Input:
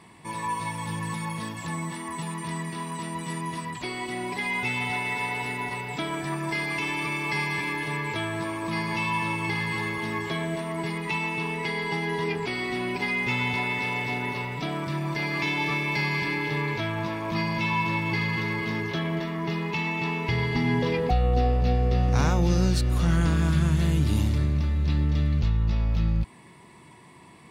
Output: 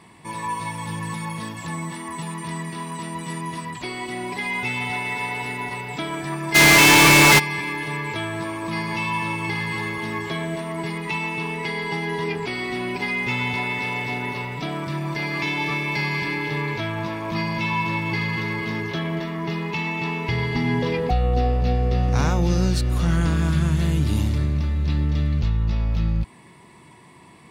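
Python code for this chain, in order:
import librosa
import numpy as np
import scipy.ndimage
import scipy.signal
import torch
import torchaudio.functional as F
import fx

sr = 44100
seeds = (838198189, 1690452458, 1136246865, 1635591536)

y = fx.fuzz(x, sr, gain_db=47.0, gate_db=-55.0, at=(6.54, 7.38), fade=0.02)
y = y * 10.0 ** (2.0 / 20.0)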